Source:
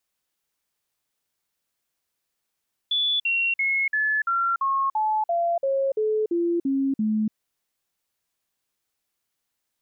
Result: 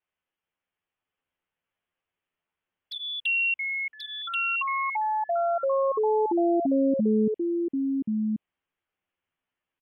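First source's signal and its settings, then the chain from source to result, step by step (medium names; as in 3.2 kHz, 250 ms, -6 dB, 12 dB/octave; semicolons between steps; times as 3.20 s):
stepped sine 3.45 kHz down, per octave 3, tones 13, 0.29 s, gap 0.05 s -20 dBFS
steep low-pass 3.2 kHz 72 dB/octave; touch-sensitive flanger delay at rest 11.4 ms, full sweep at -25.5 dBFS; on a send: delay 1083 ms -3 dB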